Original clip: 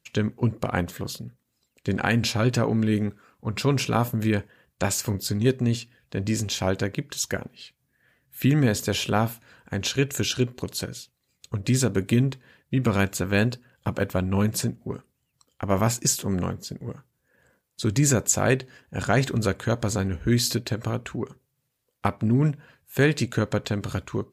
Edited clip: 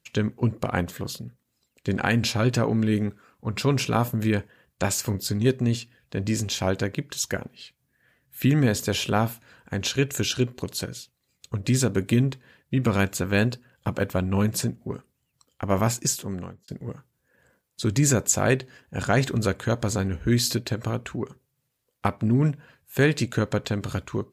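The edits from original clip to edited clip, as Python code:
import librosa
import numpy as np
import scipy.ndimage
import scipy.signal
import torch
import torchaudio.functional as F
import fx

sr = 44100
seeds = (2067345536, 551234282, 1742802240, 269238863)

y = fx.edit(x, sr, fx.fade_out_span(start_s=15.64, length_s=1.04, curve='qsin'), tone=tone)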